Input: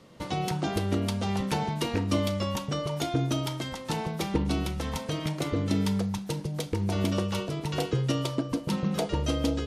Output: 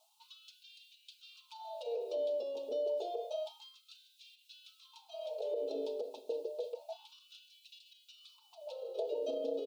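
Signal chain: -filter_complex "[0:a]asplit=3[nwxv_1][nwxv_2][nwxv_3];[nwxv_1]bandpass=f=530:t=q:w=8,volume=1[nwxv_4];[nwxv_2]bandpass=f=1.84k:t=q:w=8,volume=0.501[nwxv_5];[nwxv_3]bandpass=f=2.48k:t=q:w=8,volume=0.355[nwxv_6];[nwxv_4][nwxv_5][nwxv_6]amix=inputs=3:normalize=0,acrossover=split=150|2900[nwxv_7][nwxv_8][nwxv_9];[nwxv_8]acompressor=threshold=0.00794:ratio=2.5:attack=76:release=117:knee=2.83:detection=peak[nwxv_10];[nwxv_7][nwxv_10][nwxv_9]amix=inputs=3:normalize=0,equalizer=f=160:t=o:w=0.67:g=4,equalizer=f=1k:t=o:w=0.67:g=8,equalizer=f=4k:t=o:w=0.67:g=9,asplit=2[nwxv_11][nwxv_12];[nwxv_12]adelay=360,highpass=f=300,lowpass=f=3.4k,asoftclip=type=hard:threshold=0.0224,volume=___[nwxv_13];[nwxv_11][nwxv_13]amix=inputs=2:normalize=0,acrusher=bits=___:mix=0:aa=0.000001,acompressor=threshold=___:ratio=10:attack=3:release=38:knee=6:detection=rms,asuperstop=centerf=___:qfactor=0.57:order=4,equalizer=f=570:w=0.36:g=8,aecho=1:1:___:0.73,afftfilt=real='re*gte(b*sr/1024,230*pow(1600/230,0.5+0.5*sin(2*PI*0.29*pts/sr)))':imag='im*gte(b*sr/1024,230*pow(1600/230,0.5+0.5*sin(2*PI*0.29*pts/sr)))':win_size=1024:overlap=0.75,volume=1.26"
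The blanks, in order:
0.0631, 11, 0.00794, 1800, 4.7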